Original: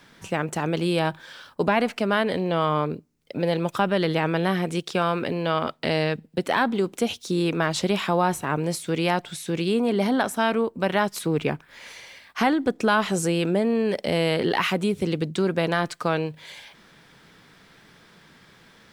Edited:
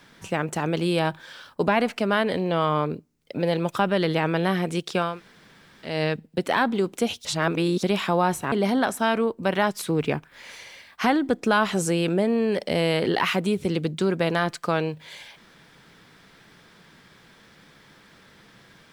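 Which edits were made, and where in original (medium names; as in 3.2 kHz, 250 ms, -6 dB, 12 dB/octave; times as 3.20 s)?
5.10–5.92 s: room tone, crossfade 0.24 s
7.25–7.83 s: reverse
8.52–9.89 s: delete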